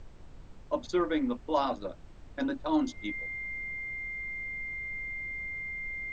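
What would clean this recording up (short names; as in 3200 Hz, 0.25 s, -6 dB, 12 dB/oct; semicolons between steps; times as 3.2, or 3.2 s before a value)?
notch 2100 Hz, Q 30; noise print and reduce 28 dB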